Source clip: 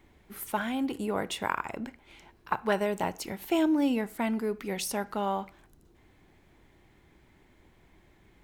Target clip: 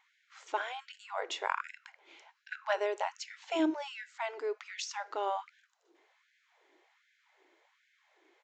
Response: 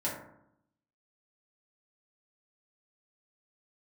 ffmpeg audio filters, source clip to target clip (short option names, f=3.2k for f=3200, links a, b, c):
-af "aresample=16000,aresample=44100,afftfilt=real='re*gte(b*sr/1024,280*pow(1500/280,0.5+0.5*sin(2*PI*1.3*pts/sr)))':imag='im*gte(b*sr/1024,280*pow(1500/280,0.5+0.5*sin(2*PI*1.3*pts/sr)))':win_size=1024:overlap=0.75,volume=-2.5dB"